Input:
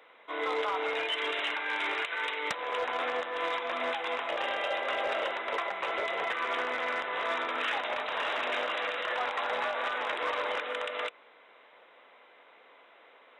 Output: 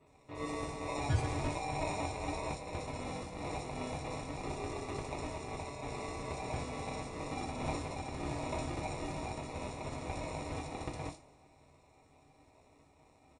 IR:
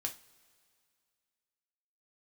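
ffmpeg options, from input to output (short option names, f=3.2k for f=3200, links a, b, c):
-filter_complex "[0:a]asplit=3[a][b][c];[a]bandpass=f=270:t=q:w=8,volume=0dB[d];[b]bandpass=f=2.29k:t=q:w=8,volume=-6dB[e];[c]bandpass=f=3.01k:t=q:w=8,volume=-9dB[f];[d][e][f]amix=inputs=3:normalize=0,highshelf=f=2.9k:t=q:w=1.5:g=6,aecho=1:1:4.6:0.65,acrusher=samples=28:mix=1:aa=0.000001,acrossover=split=3900[g][h];[h]adelay=60[i];[g][i]amix=inputs=2:normalize=0[j];[1:a]atrim=start_sample=2205[k];[j][k]afir=irnorm=-1:irlink=0,volume=6.5dB" -ar 32000 -c:a mp2 -b:a 192k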